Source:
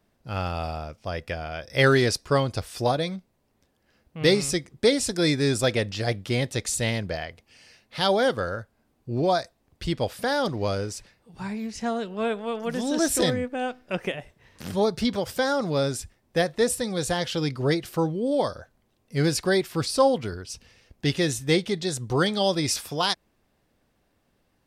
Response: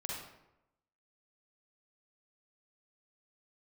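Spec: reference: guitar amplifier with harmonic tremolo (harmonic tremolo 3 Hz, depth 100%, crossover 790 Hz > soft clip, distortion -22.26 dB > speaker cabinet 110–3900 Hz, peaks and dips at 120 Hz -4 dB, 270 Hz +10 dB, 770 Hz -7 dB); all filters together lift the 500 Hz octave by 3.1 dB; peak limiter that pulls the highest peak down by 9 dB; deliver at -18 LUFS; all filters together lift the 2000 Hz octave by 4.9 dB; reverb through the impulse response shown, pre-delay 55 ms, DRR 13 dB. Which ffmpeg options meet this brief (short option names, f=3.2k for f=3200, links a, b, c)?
-filter_complex "[0:a]equalizer=f=500:t=o:g=3.5,equalizer=f=2k:t=o:g=6,alimiter=limit=-11dB:level=0:latency=1,asplit=2[a][b];[1:a]atrim=start_sample=2205,adelay=55[c];[b][c]afir=irnorm=-1:irlink=0,volume=-14dB[d];[a][d]amix=inputs=2:normalize=0,acrossover=split=790[e][f];[e]aeval=exprs='val(0)*(1-1/2+1/2*cos(2*PI*3*n/s))':c=same[g];[f]aeval=exprs='val(0)*(1-1/2-1/2*cos(2*PI*3*n/s))':c=same[h];[g][h]amix=inputs=2:normalize=0,asoftclip=threshold=-15dB,highpass=110,equalizer=f=120:t=q:w=4:g=-4,equalizer=f=270:t=q:w=4:g=10,equalizer=f=770:t=q:w=4:g=-7,lowpass=f=3.9k:w=0.5412,lowpass=f=3.9k:w=1.3066,volume=10.5dB"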